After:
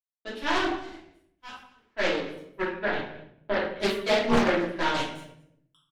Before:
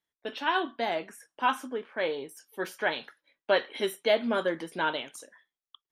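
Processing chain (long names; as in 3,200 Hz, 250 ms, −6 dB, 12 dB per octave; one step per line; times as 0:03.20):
0:00.78–0:01.83: guitar amp tone stack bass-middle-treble 5-5-5
brickwall limiter −19.5 dBFS, peak gain reduction 7.5 dB
power curve on the samples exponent 2
0:02.62–0:03.80: high-frequency loss of the air 360 metres
single-tap delay 223 ms −21.5 dB
rectangular room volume 140 cubic metres, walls mixed, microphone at 2.9 metres
highs frequency-modulated by the lows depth 0.81 ms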